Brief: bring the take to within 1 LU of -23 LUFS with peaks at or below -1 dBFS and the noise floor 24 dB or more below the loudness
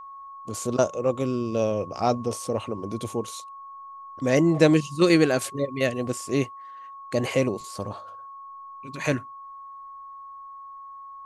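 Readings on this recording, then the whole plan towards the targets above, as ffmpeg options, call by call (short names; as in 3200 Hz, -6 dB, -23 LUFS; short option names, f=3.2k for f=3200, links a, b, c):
steady tone 1100 Hz; tone level -39 dBFS; loudness -25.0 LUFS; peak -4.0 dBFS; loudness target -23.0 LUFS
-> -af "bandreject=f=1.1k:w=30"
-af "volume=2dB"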